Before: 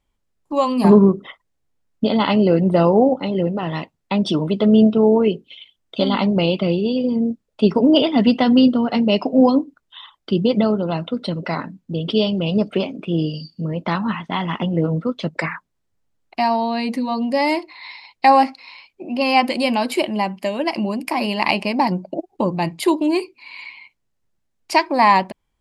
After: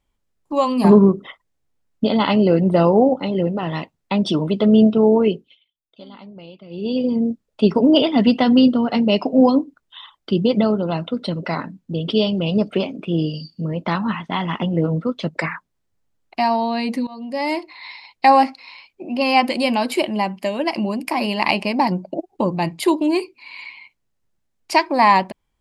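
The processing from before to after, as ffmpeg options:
-filter_complex "[0:a]asplit=4[a][b][c][d];[a]atrim=end=5.58,asetpts=PTS-STARTPTS,afade=t=out:st=5.32:d=0.26:silence=0.0794328[e];[b]atrim=start=5.58:end=6.7,asetpts=PTS-STARTPTS,volume=-22dB[f];[c]atrim=start=6.7:end=17.07,asetpts=PTS-STARTPTS,afade=t=in:d=0.26:silence=0.0794328,afade=t=out:st=10.366:d=0.004:c=hsin:silence=0.112202[g];[d]atrim=start=17.07,asetpts=PTS-STARTPTS,afade=t=in:d=0.65:silence=0.112202[h];[e][f][g][h]concat=n=4:v=0:a=1"

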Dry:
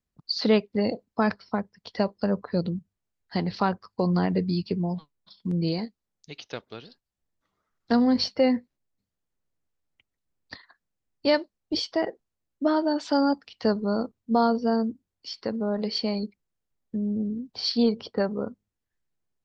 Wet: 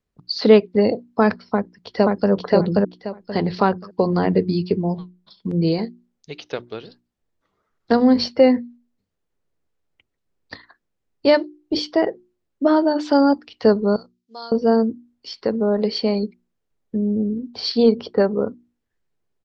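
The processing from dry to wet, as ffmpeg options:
-filter_complex "[0:a]asplit=2[a][b];[b]afade=t=in:st=1.41:d=0.01,afade=t=out:st=2.31:d=0.01,aecho=0:1:530|1060|1590|2120:1|0.25|0.0625|0.015625[c];[a][c]amix=inputs=2:normalize=0,asettb=1/sr,asplit=3[d][e][f];[d]atrim=end=13.964[g];[e]atrim=start=13.96:end=14.52,asetpts=PTS-STARTPTS,afade=t=in:d=0.004:c=qsin,afade=t=out:st=0.556:d=0.004:c=qsin,bandpass=f=5.1k:t=q:w=1.6[h];[f]atrim=start=14.516[i];[g][h]acrossfade=d=0.004:c1=hsin:c2=qsin[j];[j][i]acrossfade=d=0.004:c1=qsin:c2=hsin,lowpass=f=4k:p=1,equalizer=f=420:w=2:g=5,bandreject=f=60:t=h:w=6,bandreject=f=120:t=h:w=6,bandreject=f=180:t=h:w=6,bandreject=f=240:t=h:w=6,bandreject=f=300:t=h:w=6,bandreject=f=360:t=h:w=6,volume=6dB"

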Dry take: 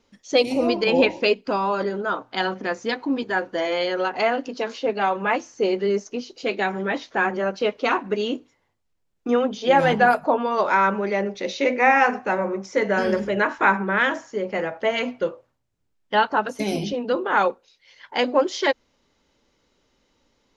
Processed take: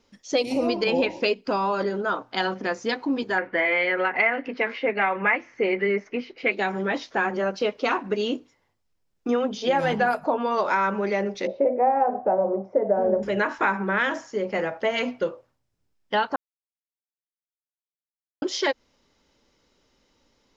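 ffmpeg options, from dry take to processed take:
-filter_complex "[0:a]asettb=1/sr,asplit=3[a][b][c];[a]atrim=end=3.384[d];[b]atrim=start=3.38:end=6.52,asetpts=PTS-STARTPTS,afade=t=in:d=0.004:c=qsin,afade=t=out:st=3.136:d=0.004:c=qsin,lowpass=f=2.1k:t=q:w=6[e];[c]atrim=start=6.516[f];[d][e]acrossfade=d=0.004:c1=hsin:c2=qsin[g];[g][f]acrossfade=d=0.004:c1=qsin:c2=hsin,asettb=1/sr,asplit=3[h][i][j];[h]atrim=end=11.474[k];[i]atrim=start=11.47:end=13.23,asetpts=PTS-STARTPTS,afade=t=in:d=0.004:c=qsin,afade=t=out:st=1.756:d=0.004:c=qsin,lowpass=f=670:t=q:w=4.2[l];[j]atrim=start=13.226[m];[k][l]acrossfade=d=0.004:c1=hsin:c2=qsin[n];[n][m]acrossfade=d=0.004:c1=qsin:c2=hsin,asplit=3[o][p][q];[o]atrim=end=16.36,asetpts=PTS-STARTPTS,afade=t=out:st=16.356:d=0.004:c=hsin[r];[p]atrim=start=16.36:end=18.42,asetpts=PTS-STARTPTS,volume=0[s];[q]atrim=start=18.42,asetpts=PTS-STARTPTS,afade=t=in:d=0.004:c=hsin[t];[r][s][t]concat=n=3:v=0:a=1,equalizer=f=5.2k:w=6:g=4.5,acompressor=threshold=-20dB:ratio=3"

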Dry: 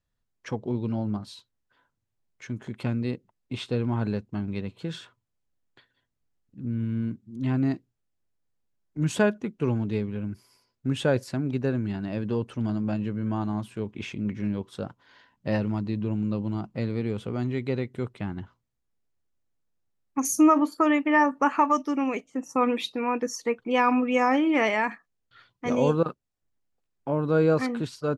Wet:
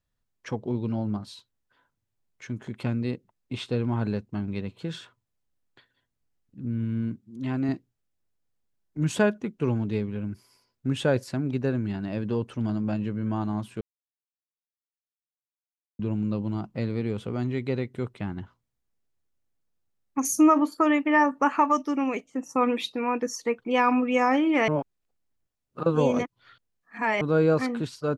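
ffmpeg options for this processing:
-filter_complex "[0:a]asettb=1/sr,asplit=3[a][b][c];[a]atrim=end=7.224[d];[b]atrim=start=7.22:end=7.69,asetpts=PTS-STARTPTS,afade=t=in:d=0.004:c=qsin,afade=t=out:st=0.466:d=0.004:c=qsin,lowshelf=f=140:g=-10[e];[c]atrim=start=7.686[f];[d][e]acrossfade=d=0.004:c1=hsin:c2=qsin[g];[g][f]acrossfade=d=0.004:c1=qsin:c2=hsin,asplit=5[h][i][j][k][l];[h]atrim=end=13.81,asetpts=PTS-STARTPTS,afade=t=out:st=13.806:d=0.004:c=hsin[m];[i]atrim=start=13.81:end=15.99,asetpts=PTS-STARTPTS,volume=0[n];[j]atrim=start=15.99:end=24.682,asetpts=PTS-STARTPTS,afade=t=in:d=0.004:c=hsin[o];[k]atrim=start=24.678:end=27.212,asetpts=PTS-STARTPTS,areverse[p];[l]atrim=start=27.208[q];[m][n][o]concat=n=3:v=0:a=1[r];[r][p]acrossfade=d=0.004:c1=hsin:c2=hsin[s];[s][q]acrossfade=d=0.004:c1=hsin:c2=hsin"

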